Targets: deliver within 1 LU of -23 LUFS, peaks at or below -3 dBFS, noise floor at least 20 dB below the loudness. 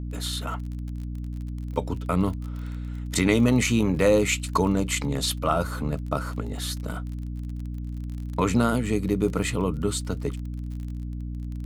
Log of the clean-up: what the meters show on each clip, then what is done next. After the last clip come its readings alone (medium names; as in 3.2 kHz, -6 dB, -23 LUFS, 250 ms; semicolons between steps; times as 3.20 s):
tick rate 35 per s; hum 60 Hz; highest harmonic 300 Hz; hum level -30 dBFS; loudness -26.5 LUFS; peak level -6.5 dBFS; loudness target -23.0 LUFS
-> de-click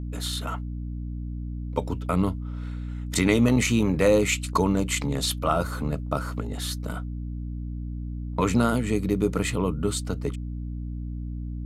tick rate 0 per s; hum 60 Hz; highest harmonic 300 Hz; hum level -30 dBFS
-> hum notches 60/120/180/240/300 Hz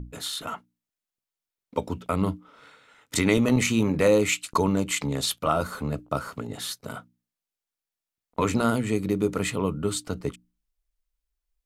hum not found; loudness -26.0 LUFS; peak level -6.5 dBFS; loudness target -23.0 LUFS
-> trim +3 dB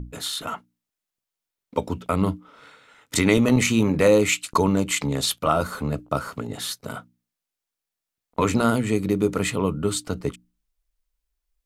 loudness -23.0 LUFS; peak level -3.5 dBFS; noise floor -86 dBFS